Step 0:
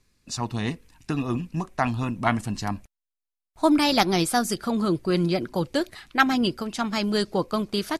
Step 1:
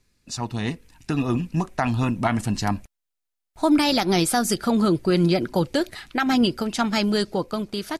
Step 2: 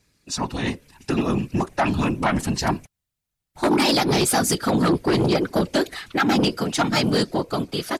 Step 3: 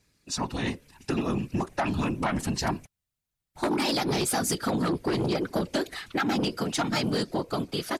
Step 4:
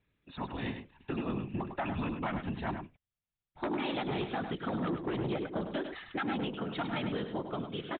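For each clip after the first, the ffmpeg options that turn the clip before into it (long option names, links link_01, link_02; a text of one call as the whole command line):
ffmpeg -i in.wav -af "bandreject=frequency=1100:width=12,alimiter=limit=-15.5dB:level=0:latency=1:release=110,dynaudnorm=framelen=150:gausssize=13:maxgain=5dB" out.wav
ffmpeg -i in.wav -af "afftfilt=real='hypot(re,im)*cos(2*PI*random(0))':imag='hypot(re,im)*sin(2*PI*random(1))':win_size=512:overlap=0.75,aeval=exprs='0.266*sin(PI/2*2.51*val(0)/0.266)':channel_layout=same,lowshelf=frequency=110:gain=-8.5,volume=-1.5dB" out.wav
ffmpeg -i in.wav -af "acompressor=threshold=-20dB:ratio=6,volume=-3.5dB" out.wav
ffmpeg -i in.wav -filter_complex "[0:a]aresample=8000,aresample=44100,asplit=2[link_01][link_02];[link_02]aecho=0:1:102:0.398[link_03];[link_01][link_03]amix=inputs=2:normalize=0,volume=-7.5dB" out.wav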